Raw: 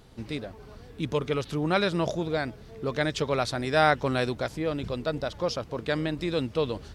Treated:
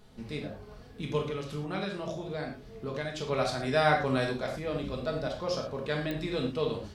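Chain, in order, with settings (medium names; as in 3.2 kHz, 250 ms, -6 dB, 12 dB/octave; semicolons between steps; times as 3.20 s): 1.21–3.27 s: compression 3:1, threshold -30 dBFS, peak gain reduction 8.5 dB; reverberation, pre-delay 5 ms, DRR 0 dB; clicks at 6.11 s, -15 dBFS; trim -6 dB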